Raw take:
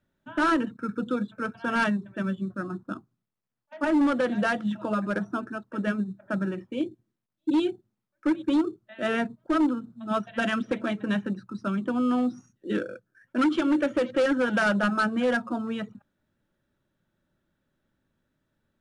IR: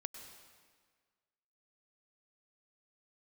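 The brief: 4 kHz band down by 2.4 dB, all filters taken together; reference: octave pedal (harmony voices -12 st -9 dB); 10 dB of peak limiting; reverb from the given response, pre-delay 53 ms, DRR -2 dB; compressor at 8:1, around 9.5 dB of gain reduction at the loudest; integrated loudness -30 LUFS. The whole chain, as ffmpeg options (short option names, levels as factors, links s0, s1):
-filter_complex "[0:a]equalizer=f=4000:t=o:g=-3.5,acompressor=threshold=0.0316:ratio=8,alimiter=level_in=2:limit=0.0631:level=0:latency=1,volume=0.501,asplit=2[s0][s1];[1:a]atrim=start_sample=2205,adelay=53[s2];[s1][s2]afir=irnorm=-1:irlink=0,volume=1.68[s3];[s0][s3]amix=inputs=2:normalize=0,asplit=2[s4][s5];[s5]asetrate=22050,aresample=44100,atempo=2,volume=0.355[s6];[s4][s6]amix=inputs=2:normalize=0,volume=1.5"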